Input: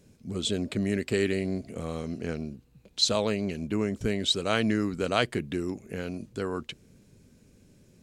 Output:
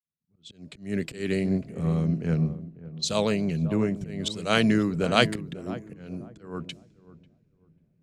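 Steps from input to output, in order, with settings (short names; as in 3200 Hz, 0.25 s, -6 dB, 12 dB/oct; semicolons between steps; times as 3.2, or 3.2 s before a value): opening faded in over 1.08 s; bell 160 Hz +14 dB 0.34 oct; de-hum 328.8 Hz, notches 3; auto swell 0.199 s; low-pass opened by the level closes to 2900 Hz, open at -30.5 dBFS; darkening echo 0.544 s, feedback 46%, low-pass 970 Hz, level -10 dB; three-band expander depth 70%; gain +1 dB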